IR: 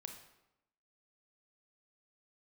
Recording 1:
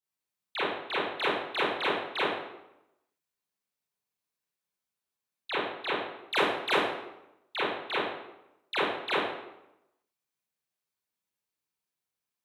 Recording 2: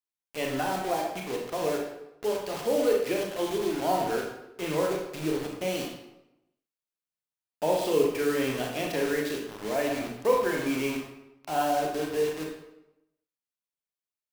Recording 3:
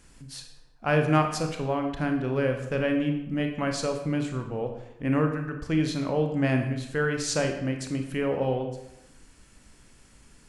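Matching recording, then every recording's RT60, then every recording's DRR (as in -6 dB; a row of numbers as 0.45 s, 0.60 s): 3; 0.90 s, 0.90 s, 0.90 s; -10.0 dB, -0.5 dB, 4.0 dB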